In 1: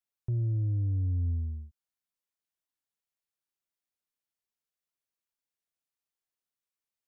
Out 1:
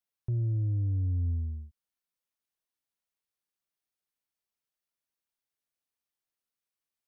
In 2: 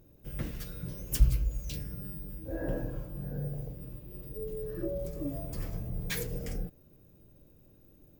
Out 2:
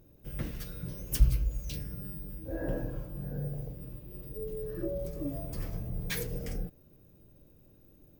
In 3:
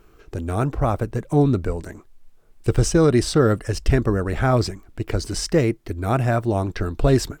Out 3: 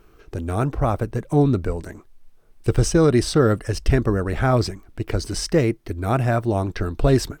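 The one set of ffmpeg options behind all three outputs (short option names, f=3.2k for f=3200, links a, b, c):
-af "bandreject=f=7.2k:w=12"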